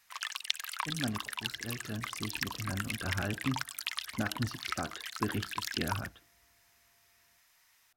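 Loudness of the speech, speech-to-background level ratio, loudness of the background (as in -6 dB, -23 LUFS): -39.5 LUFS, -2.0 dB, -37.5 LUFS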